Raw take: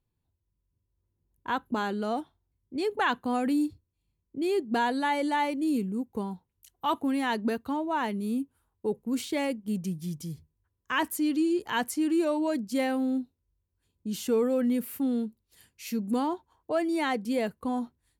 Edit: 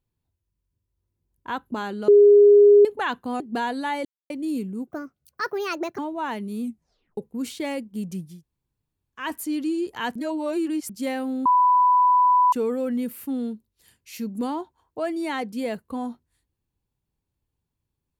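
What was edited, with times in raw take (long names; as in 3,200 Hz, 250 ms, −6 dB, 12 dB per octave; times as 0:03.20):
0:02.08–0:02.85: beep over 410 Hz −9 dBFS
0:03.40–0:04.59: remove
0:05.24–0:05.49: silence
0:06.06–0:07.71: play speed 148%
0:08.35: tape stop 0.55 s
0:10.04–0:10.94: fill with room tone, crossfade 0.24 s
0:11.88–0:12.62: reverse
0:13.18–0:14.25: beep over 994 Hz −14 dBFS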